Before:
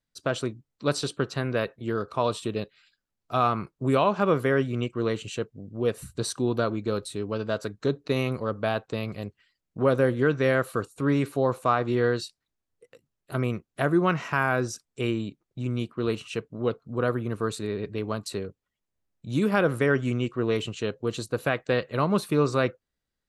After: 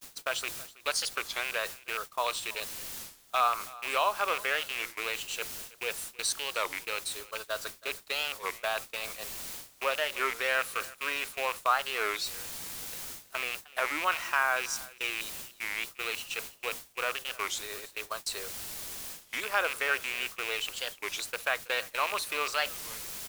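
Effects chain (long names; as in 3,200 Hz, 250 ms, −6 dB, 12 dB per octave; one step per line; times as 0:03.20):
loose part that buzzes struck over −27 dBFS, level −22 dBFS
Bessel high-pass filter 1,000 Hz, order 4
bit-depth reduction 8 bits, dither triangular
reversed playback
upward compression, threshold −34 dBFS
reversed playback
high-shelf EQ 3,400 Hz +8.5 dB
noise gate −36 dBFS, range −39 dB
spectral tilt −1.5 dB per octave
single-tap delay 324 ms −20.5 dB
wow of a warped record 33 1/3 rpm, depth 250 cents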